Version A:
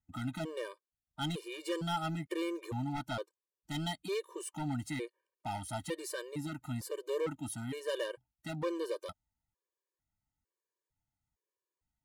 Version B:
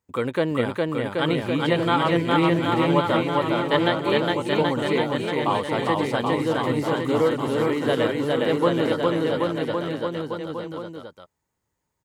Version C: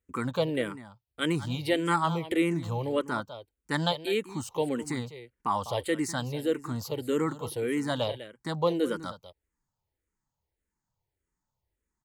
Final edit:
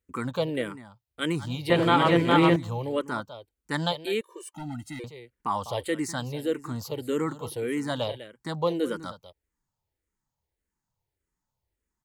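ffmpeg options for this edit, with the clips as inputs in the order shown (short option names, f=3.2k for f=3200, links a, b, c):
-filter_complex "[2:a]asplit=3[a][b][c];[a]atrim=end=1.702[d];[1:a]atrim=start=1.698:end=2.562[e];[b]atrim=start=2.558:end=4.212[f];[0:a]atrim=start=4.208:end=5.042[g];[c]atrim=start=5.038[h];[d][e]acrossfade=d=0.004:c1=hsin:c2=hsin[i];[i][f]acrossfade=d=0.004:c1=hsin:c2=hsin[j];[j][g]acrossfade=d=0.004:c1=hsin:c2=hsin[k];[k][h]acrossfade=d=0.004:c1=hsin:c2=hsin"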